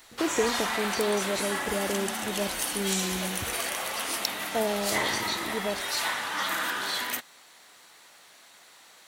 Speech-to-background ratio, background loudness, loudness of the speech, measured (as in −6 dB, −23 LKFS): −3.0 dB, −29.5 LKFS, −32.5 LKFS